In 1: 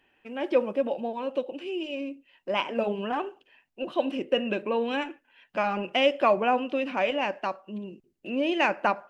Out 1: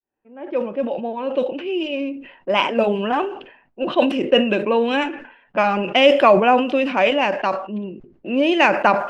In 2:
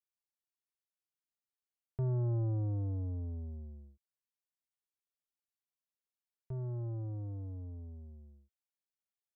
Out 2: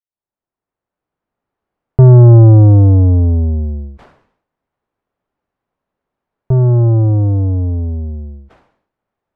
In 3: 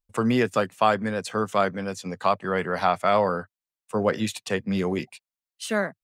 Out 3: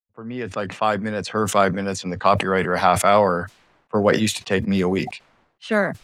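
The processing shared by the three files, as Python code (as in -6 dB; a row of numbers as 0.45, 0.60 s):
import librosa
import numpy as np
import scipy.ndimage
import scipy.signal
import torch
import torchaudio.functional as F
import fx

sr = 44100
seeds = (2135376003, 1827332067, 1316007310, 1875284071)

y = fx.fade_in_head(x, sr, length_s=1.65)
y = fx.env_lowpass(y, sr, base_hz=1000.0, full_db=-24.0)
y = fx.sustainer(y, sr, db_per_s=90.0)
y = y * 10.0 ** (-2 / 20.0) / np.max(np.abs(y))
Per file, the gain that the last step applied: +9.0, +28.5, +5.0 dB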